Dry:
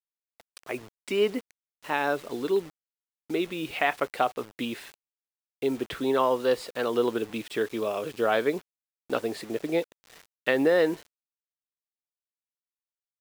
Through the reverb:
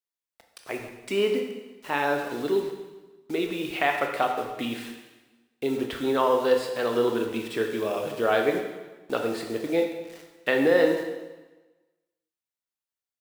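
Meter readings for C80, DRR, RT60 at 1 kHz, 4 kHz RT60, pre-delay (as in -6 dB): 7.0 dB, 3.0 dB, 1.2 s, 1.1 s, 12 ms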